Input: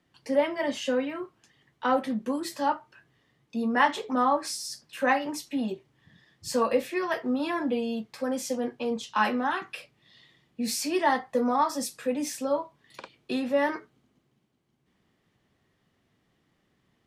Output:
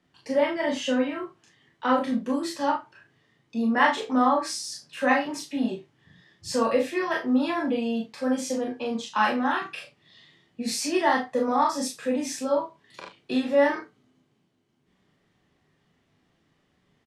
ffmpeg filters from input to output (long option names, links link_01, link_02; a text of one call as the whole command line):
ffmpeg -i in.wav -filter_complex "[0:a]lowpass=9200,asplit=2[link_01][link_02];[link_02]adelay=32,volume=-11.5dB[link_03];[link_01][link_03]amix=inputs=2:normalize=0,aecho=1:1:27|39|78:0.562|0.631|0.158" out.wav